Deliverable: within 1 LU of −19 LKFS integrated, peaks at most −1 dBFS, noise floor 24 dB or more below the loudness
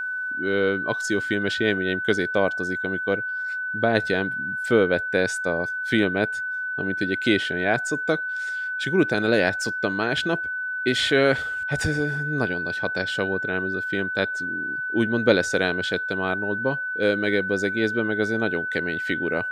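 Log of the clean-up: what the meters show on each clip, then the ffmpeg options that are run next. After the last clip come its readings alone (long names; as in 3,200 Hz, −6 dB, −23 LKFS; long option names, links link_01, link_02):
interfering tone 1,500 Hz; level of the tone −26 dBFS; integrated loudness −23.5 LKFS; sample peak −4.0 dBFS; target loudness −19.0 LKFS
→ -af "bandreject=frequency=1500:width=30"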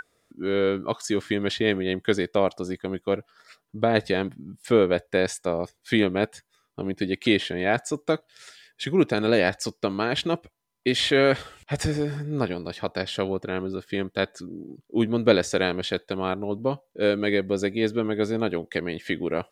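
interfering tone none found; integrated loudness −25.5 LKFS; sample peak −4.0 dBFS; target loudness −19.0 LKFS
→ -af "volume=6.5dB,alimiter=limit=-1dB:level=0:latency=1"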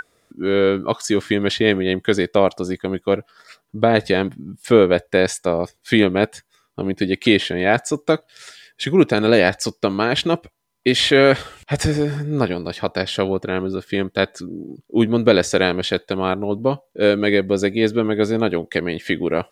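integrated loudness −19.0 LKFS; sample peak −1.0 dBFS; background noise floor −67 dBFS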